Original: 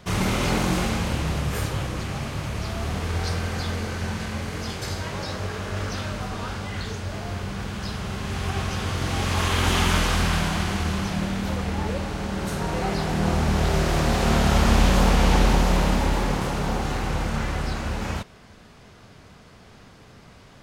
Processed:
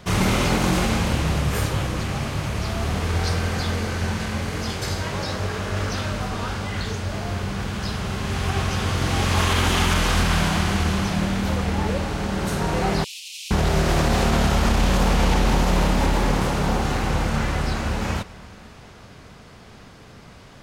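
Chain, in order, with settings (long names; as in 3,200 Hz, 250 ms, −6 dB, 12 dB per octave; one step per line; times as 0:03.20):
on a send at −19 dB: convolution reverb RT60 5.3 s, pre-delay 103 ms
on the sum: brickwall limiter −13.5 dBFS, peak gain reduction 7 dB
0:13.04–0:13.51: Butterworth high-pass 2,500 Hz 72 dB per octave
level +3.5 dB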